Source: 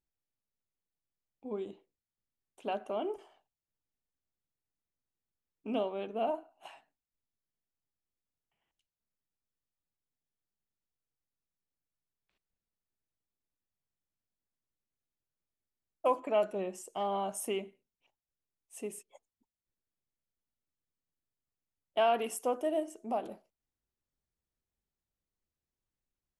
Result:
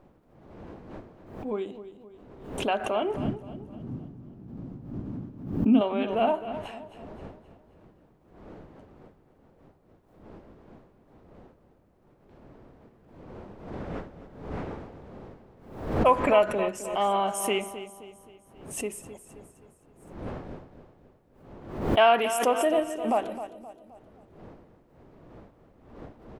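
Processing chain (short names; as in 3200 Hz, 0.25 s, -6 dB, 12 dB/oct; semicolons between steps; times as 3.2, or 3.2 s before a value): wind noise 450 Hz -53 dBFS; 3.16–5.81 ten-band EQ 125 Hz +10 dB, 250 Hz +11 dB, 500 Hz -8 dB, 1000 Hz -4 dB, 2000 Hz -8 dB, 4000 Hz -5 dB, 8000 Hz -4 dB; on a send: feedback echo 0.262 s, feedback 47%, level -11.5 dB; on the sum: dynamic EQ 1800 Hz, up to +8 dB, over -52 dBFS, Q 0.71; backwards sustainer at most 77 dB/s; gain +5.5 dB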